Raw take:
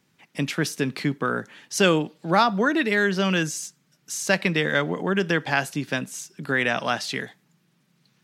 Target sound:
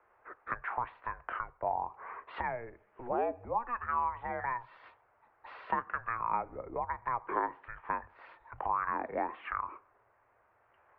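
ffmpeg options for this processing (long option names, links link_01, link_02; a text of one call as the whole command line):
ffmpeg -i in.wav -filter_complex "[0:a]highpass=frequency=190:width_type=q:width=0.5412,highpass=frequency=190:width_type=q:width=1.307,lowpass=frequency=3500:width_type=q:width=0.5176,lowpass=frequency=3500:width_type=q:width=0.7071,lowpass=frequency=3500:width_type=q:width=1.932,afreqshift=-320,acompressor=threshold=-36dB:ratio=5,acrossover=split=520 2100:gain=0.0708 1 0.112[link_01][link_02][link_03];[link_01][link_02][link_03]amix=inputs=3:normalize=0,asetrate=33075,aresample=44100,volume=9dB" out.wav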